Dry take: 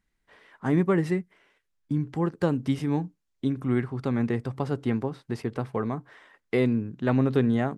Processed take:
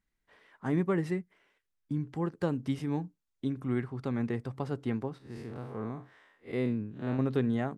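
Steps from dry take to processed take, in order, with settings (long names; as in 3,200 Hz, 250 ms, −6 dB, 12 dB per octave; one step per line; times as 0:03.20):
0:05.18–0:07.19: spectrum smeared in time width 116 ms
level −6 dB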